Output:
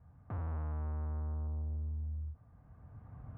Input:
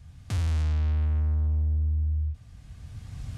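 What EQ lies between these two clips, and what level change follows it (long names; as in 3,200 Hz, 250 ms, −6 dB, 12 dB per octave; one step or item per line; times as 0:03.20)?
high-pass filter 92 Hz 6 dB per octave
low-pass filter 1,200 Hz 24 dB per octave
low-shelf EQ 410 Hz −9 dB
0.0 dB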